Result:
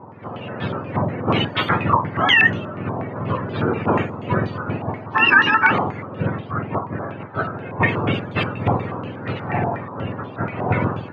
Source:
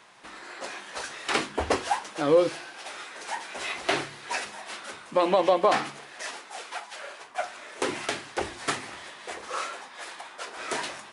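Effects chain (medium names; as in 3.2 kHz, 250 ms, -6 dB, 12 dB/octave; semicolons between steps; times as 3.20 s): spectrum inverted on a logarithmic axis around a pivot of 970 Hz; loudness maximiser +18.5 dB; step-sequenced low-pass 8.3 Hz 980–3500 Hz; trim -9.5 dB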